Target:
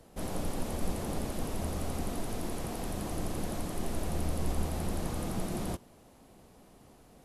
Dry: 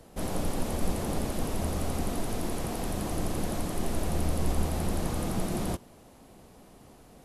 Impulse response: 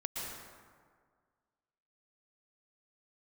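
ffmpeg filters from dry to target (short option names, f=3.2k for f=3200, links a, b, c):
-af "volume=-4dB"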